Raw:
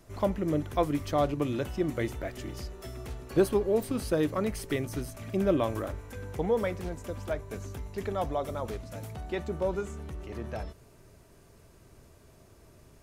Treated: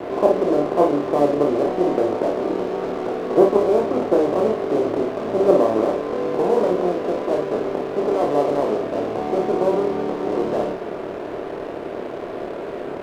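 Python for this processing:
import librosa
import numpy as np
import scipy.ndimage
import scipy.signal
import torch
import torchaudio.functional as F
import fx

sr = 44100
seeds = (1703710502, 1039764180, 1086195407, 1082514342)

p1 = fx.bin_compress(x, sr, power=0.4)
p2 = scipy.signal.sosfilt(scipy.signal.butter(2, 290.0, 'highpass', fs=sr, output='sos'), p1)
p3 = fx.level_steps(p2, sr, step_db=20)
p4 = p2 + F.gain(torch.from_numpy(p3), -2.0).numpy()
p5 = scipy.signal.sosfilt(scipy.signal.butter(4, 1000.0, 'lowpass', fs=sr, output='sos'), p4)
p6 = np.sign(p5) * np.maximum(np.abs(p5) - 10.0 ** (-38.0 / 20.0), 0.0)
p7 = p6 + fx.room_early_taps(p6, sr, ms=(28, 55), db=(-4.0, -6.0), dry=0)
y = F.gain(torch.from_numpy(p7), 3.5).numpy()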